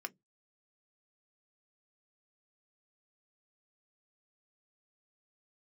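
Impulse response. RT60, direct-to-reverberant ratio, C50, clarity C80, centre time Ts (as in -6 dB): 0.15 s, 7.5 dB, 31.0 dB, 41.5 dB, 3 ms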